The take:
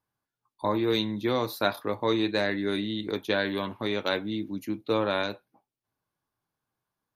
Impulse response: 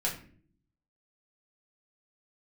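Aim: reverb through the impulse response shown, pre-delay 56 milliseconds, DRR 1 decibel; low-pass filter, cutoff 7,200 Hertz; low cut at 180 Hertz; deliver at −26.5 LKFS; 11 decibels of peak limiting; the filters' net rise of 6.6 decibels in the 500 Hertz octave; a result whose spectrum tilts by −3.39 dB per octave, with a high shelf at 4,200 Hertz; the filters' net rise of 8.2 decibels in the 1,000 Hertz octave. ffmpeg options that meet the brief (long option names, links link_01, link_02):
-filter_complex "[0:a]highpass=180,lowpass=7200,equalizer=frequency=500:width_type=o:gain=6,equalizer=frequency=1000:width_type=o:gain=8.5,highshelf=frequency=4200:gain=-3,alimiter=limit=-16.5dB:level=0:latency=1,asplit=2[link_01][link_02];[1:a]atrim=start_sample=2205,adelay=56[link_03];[link_02][link_03]afir=irnorm=-1:irlink=0,volume=-7dB[link_04];[link_01][link_04]amix=inputs=2:normalize=0,volume=-1dB"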